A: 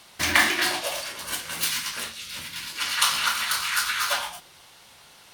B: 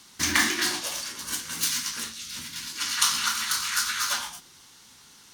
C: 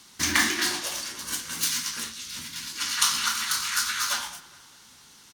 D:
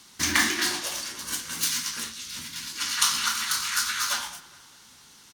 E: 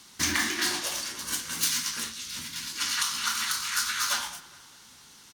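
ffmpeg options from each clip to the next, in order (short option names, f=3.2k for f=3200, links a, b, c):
-af "equalizer=f=250:t=o:w=0.67:g=7,equalizer=f=630:t=o:w=0.67:g=-12,equalizer=f=2.5k:t=o:w=0.67:g=-4,equalizer=f=6.3k:t=o:w=0.67:g=7,volume=-2dB"
-filter_complex "[0:a]asplit=2[a][b];[b]adelay=205,lowpass=f=3.2k:p=1,volume=-18dB,asplit=2[c][d];[d]adelay=205,lowpass=f=3.2k:p=1,volume=0.52,asplit=2[e][f];[f]adelay=205,lowpass=f=3.2k:p=1,volume=0.52,asplit=2[g][h];[h]adelay=205,lowpass=f=3.2k:p=1,volume=0.52[i];[a][c][e][g][i]amix=inputs=5:normalize=0"
-af anull
-af "alimiter=limit=-12.5dB:level=0:latency=1:release=421"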